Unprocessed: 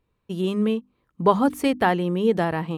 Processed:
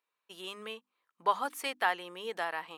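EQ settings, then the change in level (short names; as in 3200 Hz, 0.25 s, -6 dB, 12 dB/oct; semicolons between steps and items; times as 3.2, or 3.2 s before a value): HPF 1000 Hz 12 dB/oct; -4.0 dB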